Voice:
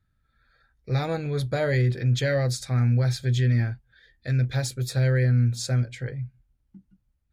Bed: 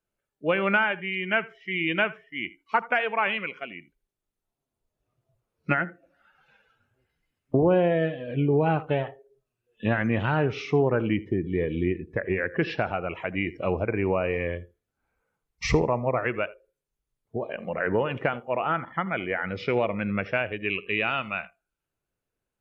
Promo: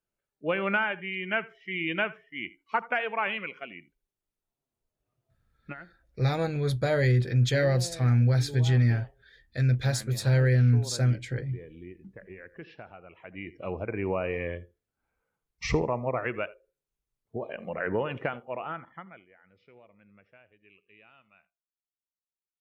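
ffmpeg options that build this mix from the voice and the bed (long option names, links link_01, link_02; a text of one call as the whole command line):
ffmpeg -i stem1.wav -i stem2.wav -filter_complex "[0:a]adelay=5300,volume=-0.5dB[link_01];[1:a]volume=11dB,afade=type=out:start_time=5.48:duration=0.26:silence=0.177828,afade=type=in:start_time=13.13:duration=1.03:silence=0.177828,afade=type=out:start_time=18.11:duration=1.15:silence=0.0446684[link_02];[link_01][link_02]amix=inputs=2:normalize=0" out.wav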